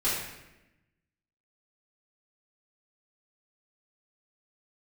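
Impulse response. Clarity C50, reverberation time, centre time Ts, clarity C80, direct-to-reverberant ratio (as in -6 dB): 1.0 dB, 1.0 s, 67 ms, 3.5 dB, -9.5 dB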